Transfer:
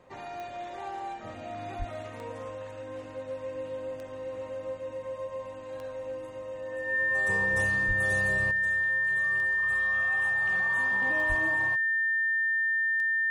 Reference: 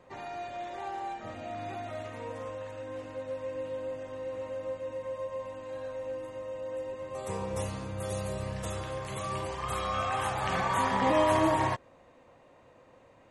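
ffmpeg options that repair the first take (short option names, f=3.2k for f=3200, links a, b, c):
-filter_complex "[0:a]adeclick=t=4,bandreject=f=1.8k:w=30,asplit=3[a][b][c];[a]afade=t=out:st=1.78:d=0.02[d];[b]highpass=f=140:w=0.5412,highpass=f=140:w=1.3066,afade=t=in:st=1.78:d=0.02,afade=t=out:st=1.9:d=0.02[e];[c]afade=t=in:st=1.9:d=0.02[f];[d][e][f]amix=inputs=3:normalize=0,asplit=3[g][h][i];[g]afade=t=out:st=7.87:d=0.02[j];[h]highpass=f=140:w=0.5412,highpass=f=140:w=1.3066,afade=t=in:st=7.87:d=0.02,afade=t=out:st=7.99:d=0.02[k];[i]afade=t=in:st=7.99:d=0.02[l];[j][k][l]amix=inputs=3:normalize=0,asplit=3[m][n][o];[m]afade=t=out:st=11.28:d=0.02[p];[n]highpass=f=140:w=0.5412,highpass=f=140:w=1.3066,afade=t=in:st=11.28:d=0.02,afade=t=out:st=11.4:d=0.02[q];[o]afade=t=in:st=11.4:d=0.02[r];[p][q][r]amix=inputs=3:normalize=0,asetnsamples=n=441:p=0,asendcmd='8.51 volume volume 11.5dB',volume=0dB"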